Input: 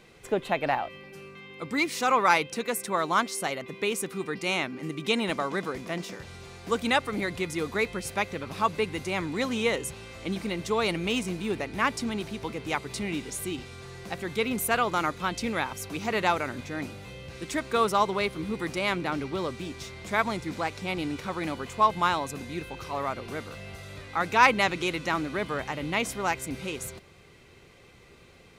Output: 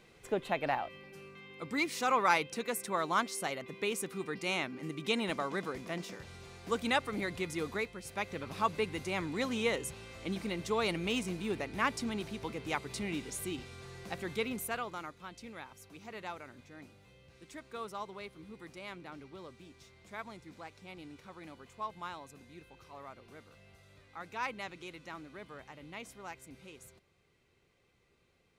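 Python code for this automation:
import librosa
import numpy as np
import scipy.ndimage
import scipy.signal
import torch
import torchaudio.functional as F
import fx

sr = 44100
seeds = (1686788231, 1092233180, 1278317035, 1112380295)

y = fx.gain(x, sr, db=fx.line((7.73, -6.0), (7.93, -13.0), (8.38, -5.5), (14.31, -5.5), (15.15, -18.0)))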